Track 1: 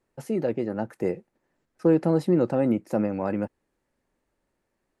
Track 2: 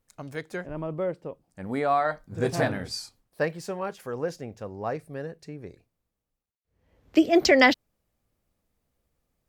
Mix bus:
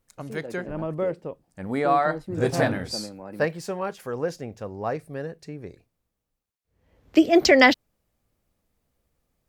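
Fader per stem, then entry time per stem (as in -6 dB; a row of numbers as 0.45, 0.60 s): -12.0, +2.5 dB; 0.00, 0.00 s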